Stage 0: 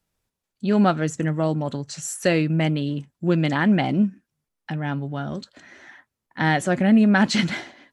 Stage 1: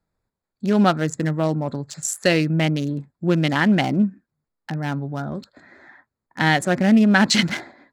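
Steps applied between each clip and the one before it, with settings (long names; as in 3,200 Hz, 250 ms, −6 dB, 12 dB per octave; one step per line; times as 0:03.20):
adaptive Wiener filter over 15 samples
high-shelf EQ 2,300 Hz +9 dB
level +1 dB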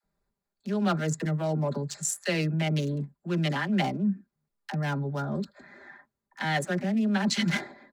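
comb filter 5 ms, depth 54%
reversed playback
downward compressor 10 to 1, threshold −20 dBFS, peak gain reduction 12.5 dB
reversed playback
all-pass dispersion lows, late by 41 ms, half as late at 450 Hz
level −3 dB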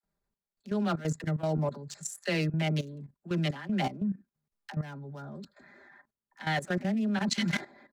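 output level in coarse steps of 14 dB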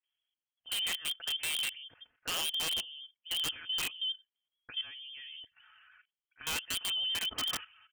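voice inversion scrambler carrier 3,300 Hz
pitch vibrato 11 Hz 34 cents
wrap-around overflow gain 22 dB
level −5 dB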